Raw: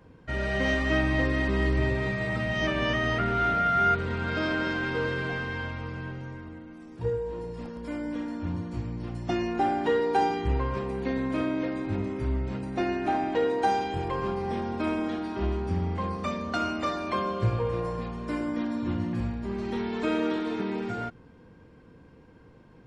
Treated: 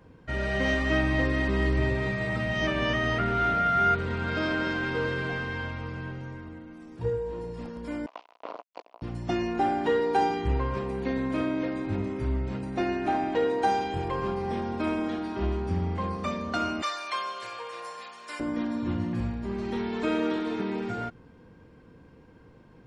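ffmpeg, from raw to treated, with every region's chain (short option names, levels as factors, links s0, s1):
-filter_complex "[0:a]asettb=1/sr,asplit=3[s0][s1][s2];[s0]atrim=end=8.064[s3];[s1]atrim=start=8.06:end=9.02,asetpts=PTS-STARTPTS,afade=t=in:d=0.004:c=qsin,afade=t=out:st=0.956:d=0.004:c=qsin,acrusher=bits=3:mix=0:aa=0.5,highpass=f=360:w=0.5412,highpass=f=360:w=1.3066,equalizer=f=370:t=q:w=4:g=-8,equalizer=f=680:t=q:w=4:g=8,equalizer=f=1000:t=q:w=4:g=9,equalizer=f=1700:t=q:w=4:g=-6,equalizer=f=2800:t=q:w=4:g=4,lowpass=f=5600:w=0.5412,lowpass=f=5600:w=1.3066[s4];[s2]atrim=start=9.016[s5];[s3][s4]acrossfade=d=0.004:c1=hsin:c2=qsin[s6];[s6][s5]acrossfade=d=0.004:c1=qsin:c2=hsin,asettb=1/sr,asplit=3[s7][s8][s9];[s7]atrim=end=16.824[s10];[s8]atrim=start=16.82:end=18.4,asetpts=PTS-STARTPTS,afade=t=in:d=0.004:c=qsin,afade=t=out:st=1.576:d=0.004:c=qsin,highpass=980,highshelf=f=3500:g=10[s11];[s9]atrim=start=18.396[s12];[s10][s11]acrossfade=d=0.004:c1=hsin:c2=qsin[s13];[s13][s12]acrossfade=d=0.004:c1=qsin:c2=hsin"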